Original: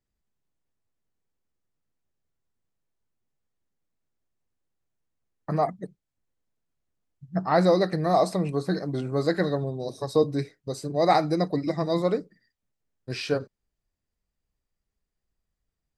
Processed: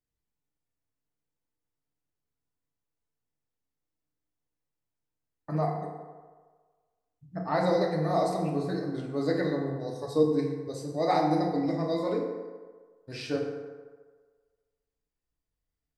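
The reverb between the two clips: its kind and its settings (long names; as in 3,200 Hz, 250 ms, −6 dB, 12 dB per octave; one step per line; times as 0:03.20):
feedback delay network reverb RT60 1.5 s, low-frequency decay 0.75×, high-frequency decay 0.5×, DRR −1 dB
level −8 dB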